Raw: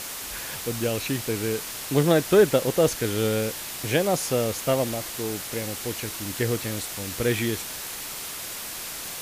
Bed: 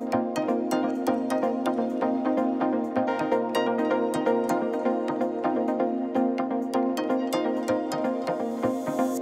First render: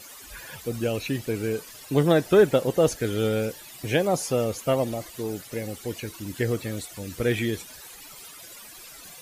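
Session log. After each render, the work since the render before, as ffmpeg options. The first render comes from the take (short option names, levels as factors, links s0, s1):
-af "afftdn=nr=15:nf=-35"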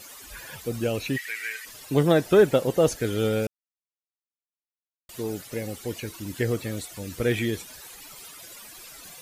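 -filter_complex "[0:a]asplit=3[s0][s1][s2];[s0]afade=t=out:st=1.16:d=0.02[s3];[s1]highpass=f=1900:t=q:w=11,afade=t=in:st=1.16:d=0.02,afade=t=out:st=1.64:d=0.02[s4];[s2]afade=t=in:st=1.64:d=0.02[s5];[s3][s4][s5]amix=inputs=3:normalize=0,asplit=3[s6][s7][s8];[s6]atrim=end=3.47,asetpts=PTS-STARTPTS,afade=t=out:st=3.466:d=0.004:c=hsin[s9];[s7]atrim=start=3.47:end=5.09,asetpts=PTS-STARTPTS,volume=0[s10];[s8]atrim=start=5.09,asetpts=PTS-STARTPTS,afade=t=in:d=0.004:c=hsin[s11];[s9][s10][s11]concat=n=3:v=0:a=1"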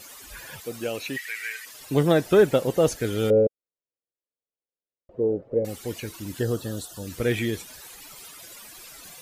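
-filter_complex "[0:a]asettb=1/sr,asplit=3[s0][s1][s2];[s0]atrim=end=0.604[s3];[s1]atrim=start=0.6:end=1.8,asetpts=PTS-STARTPTS,afade=t=in:d=0.004:c=qsin,afade=t=out:st=1.196:d=0.004:c=qsin,highpass=f=430:p=1[s4];[s2]atrim=start=1.796[s5];[s3][s4]acrossfade=d=0.004:c1=hsin:c2=qsin[s6];[s6][s5]acrossfade=d=0.004:c1=qsin:c2=hsin,asettb=1/sr,asplit=3[s7][s8][s9];[s7]atrim=end=3.304[s10];[s8]atrim=start=3.3:end=5.65,asetpts=PTS-STARTPTS,afade=t=in:d=0.004:c=qsin,afade=t=out:st=2.346:d=0.004:c=qsin,lowpass=f=510:t=q:w=3.8[s11];[s9]atrim=start=5.646[s12];[s10][s11]acrossfade=d=0.004:c1=hsin:c2=qsin[s13];[s13][s12]acrossfade=d=0.004:c1=qsin:c2=hsin,asettb=1/sr,asplit=3[s14][s15][s16];[s14]atrim=end=6.394[s17];[s15]atrim=start=6.39:end=7.07,asetpts=PTS-STARTPTS,afade=t=in:d=0.004:c=qsin,afade=t=out:st=0.676:d=0.004:c=qsin,asuperstop=centerf=2200:order=4:qfactor=1.9[s18];[s16]atrim=start=7.066[s19];[s17][s18]acrossfade=d=0.004:c1=hsin:c2=qsin[s20];[s20][s19]acrossfade=d=0.004:c1=qsin:c2=hsin"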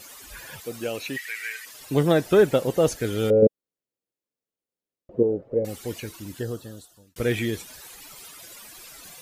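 -filter_complex "[0:a]asettb=1/sr,asplit=3[s0][s1][s2];[s0]atrim=end=3.424[s3];[s1]atrim=start=3.42:end=5.23,asetpts=PTS-STARTPTS,afade=t=in:d=0.004:c=qsin,afade=t=out:st=1.806:d=0.004:c=qsin,equalizer=f=220:w=0.54:g=10[s4];[s2]atrim=start=5.226[s5];[s3][s4]acrossfade=d=0.004:c1=hsin:c2=qsin[s6];[s6][s5]acrossfade=d=0.004:c1=qsin:c2=hsin,asplit=2[s7][s8];[s7]atrim=end=7.16,asetpts=PTS-STARTPTS,afade=t=out:st=5.94:d=1.22[s9];[s8]atrim=start=7.16,asetpts=PTS-STARTPTS,afade=t=in:d=0.004:c=hsin[s10];[s9][s10]concat=n=2:v=0:a=1"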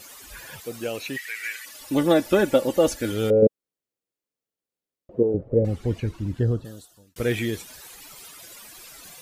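-filter_complex "[0:a]asettb=1/sr,asplit=3[s0][s1][s2];[s0]atrim=end=1.434[s3];[s1]atrim=start=1.43:end=3.12,asetpts=PTS-STARTPTS,afade=t=in:d=0.004:c=qsin,afade=t=out:st=1.686:d=0.004:c=qsin,aecho=1:1:3.5:0.65,atrim=end_sample=74529[s4];[s2]atrim=start=3.116[s5];[s3][s4]acrossfade=d=0.004:c1=hsin:c2=qsin[s6];[s6][s5]acrossfade=d=0.004:c1=qsin:c2=hsin,asettb=1/sr,asplit=3[s7][s8][s9];[s7]atrim=end=5.344[s10];[s8]atrim=start=5.34:end=6.65,asetpts=PTS-STARTPTS,afade=t=in:d=0.004:c=qsin,afade=t=out:st=1.306:d=0.004:c=qsin,aemphasis=mode=reproduction:type=riaa[s11];[s9]atrim=start=6.646[s12];[s10][s11]acrossfade=d=0.004:c1=hsin:c2=qsin[s13];[s13][s12]acrossfade=d=0.004:c1=qsin:c2=hsin"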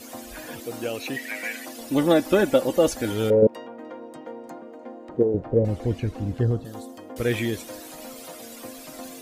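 -filter_complex "[1:a]volume=0.188[s0];[0:a][s0]amix=inputs=2:normalize=0"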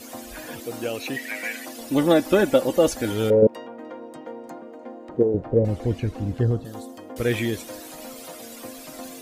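-af "volume=1.12"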